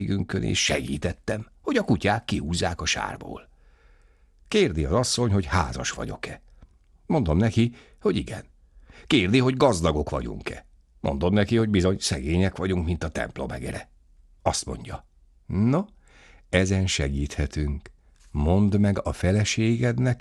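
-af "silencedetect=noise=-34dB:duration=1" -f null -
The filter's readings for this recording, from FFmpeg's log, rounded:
silence_start: 3.37
silence_end: 4.52 | silence_duration: 1.14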